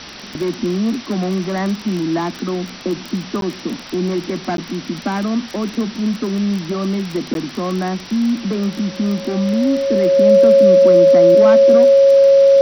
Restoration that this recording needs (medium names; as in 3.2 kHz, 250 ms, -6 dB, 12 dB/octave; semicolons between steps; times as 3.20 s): de-click; band-stop 550 Hz, Q 30; interpolate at 3.41/4.57/7.34 s, 12 ms; noise print and reduce 26 dB